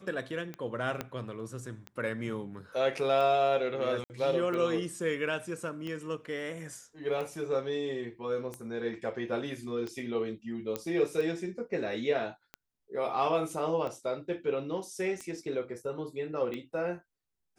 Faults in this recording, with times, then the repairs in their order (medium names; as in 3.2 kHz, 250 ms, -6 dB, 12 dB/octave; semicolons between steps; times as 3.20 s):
tick 45 rpm -25 dBFS
1.01 s: pop -18 dBFS
4.04–4.10 s: dropout 59 ms
10.76 s: pop -17 dBFS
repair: de-click; interpolate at 4.04 s, 59 ms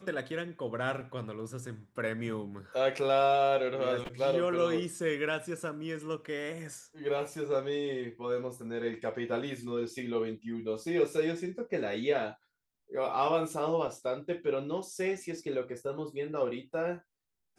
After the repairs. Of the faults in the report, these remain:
1.01 s: pop